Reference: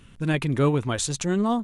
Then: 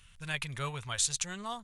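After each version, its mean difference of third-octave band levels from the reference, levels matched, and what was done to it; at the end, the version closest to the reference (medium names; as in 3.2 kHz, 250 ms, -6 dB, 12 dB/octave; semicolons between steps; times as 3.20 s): 7.0 dB: amplifier tone stack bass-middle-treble 10-0-10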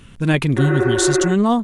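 2.5 dB: spectral replace 0.60–1.28 s, 290–2700 Hz after; trim +7 dB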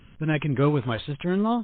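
4.0 dB: MP3 24 kbps 8 kHz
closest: second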